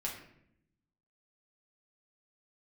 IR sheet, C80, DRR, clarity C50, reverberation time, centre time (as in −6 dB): 8.5 dB, −3.5 dB, 5.5 dB, 0.70 s, 32 ms